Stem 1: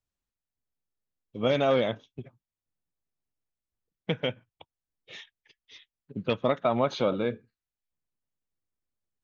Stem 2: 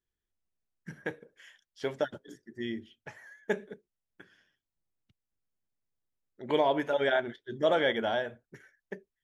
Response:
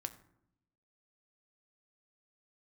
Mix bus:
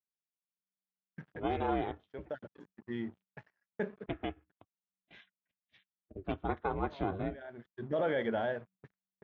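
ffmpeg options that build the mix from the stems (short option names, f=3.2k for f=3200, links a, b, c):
-filter_complex "[0:a]aeval=exprs='val(0)*sin(2*PI*190*n/s)':c=same,volume=-5dB,asplit=2[a][b];[1:a]adynamicequalizer=threshold=0.00891:dfrequency=500:dqfactor=2:tfrequency=500:tqfactor=2:attack=5:release=100:ratio=0.375:range=2.5:mode=boostabove:tftype=bell,alimiter=limit=-19dB:level=0:latency=1:release=19,aeval=exprs='sgn(val(0))*max(abs(val(0))-0.00282,0)':c=same,adelay=300,volume=-2.5dB[c];[b]apad=whole_len=420418[d];[c][d]sidechaincompress=threshold=-50dB:ratio=16:attack=10:release=361[e];[a][e]amix=inputs=2:normalize=0,agate=range=-16dB:threshold=-59dB:ratio=16:detection=peak,asubboost=boost=2.5:cutoff=230,highpass=100,lowpass=2.1k"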